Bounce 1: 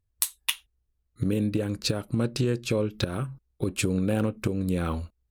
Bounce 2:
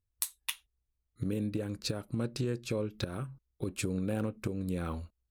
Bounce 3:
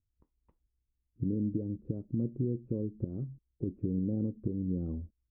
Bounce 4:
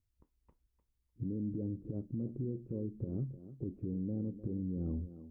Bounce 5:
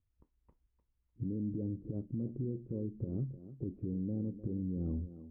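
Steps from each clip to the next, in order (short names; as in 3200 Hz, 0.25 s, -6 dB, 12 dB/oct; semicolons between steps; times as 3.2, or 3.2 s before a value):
dynamic EQ 3000 Hz, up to -4 dB, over -51 dBFS, Q 4; gain -7.5 dB
modulation noise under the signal 34 dB; ladder low-pass 420 Hz, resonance 25%; gain +6.5 dB
limiter -30.5 dBFS, peak gain reduction 10 dB; thinning echo 0.302 s, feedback 17%, high-pass 180 Hz, level -11 dB; gain +1 dB
air absorption 380 m; gain +1 dB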